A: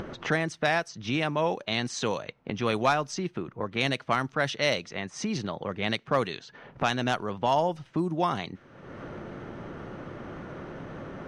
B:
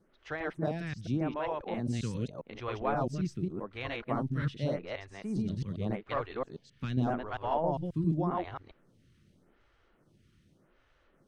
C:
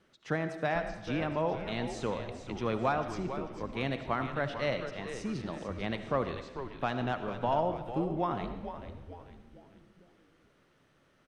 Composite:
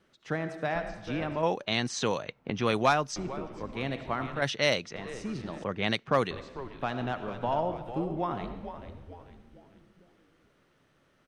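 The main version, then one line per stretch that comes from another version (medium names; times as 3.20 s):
C
1.43–3.16 s: from A
4.42–4.96 s: from A
5.64–6.31 s: from A
not used: B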